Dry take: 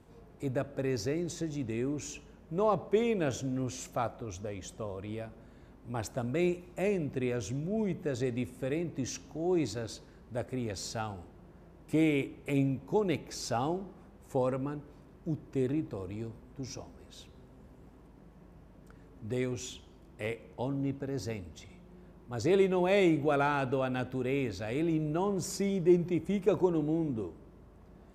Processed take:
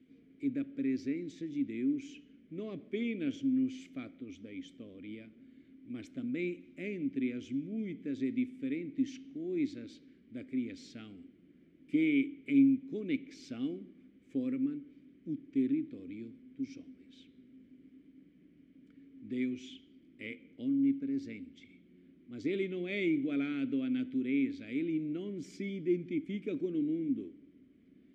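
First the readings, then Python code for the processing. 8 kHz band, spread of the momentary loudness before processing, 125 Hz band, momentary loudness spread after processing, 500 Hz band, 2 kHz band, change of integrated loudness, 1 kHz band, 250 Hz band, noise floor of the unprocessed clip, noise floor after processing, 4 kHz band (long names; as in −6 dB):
below −15 dB, 15 LU, −12.5 dB, 17 LU, −10.0 dB, −4.0 dB, −2.5 dB, below −25 dB, +1.0 dB, −56 dBFS, −62 dBFS, −7.5 dB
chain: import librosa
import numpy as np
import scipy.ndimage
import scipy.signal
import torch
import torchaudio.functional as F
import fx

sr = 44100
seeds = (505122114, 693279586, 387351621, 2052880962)

y = fx.vowel_filter(x, sr, vowel='i')
y = F.gain(torch.from_numpy(y), 7.0).numpy()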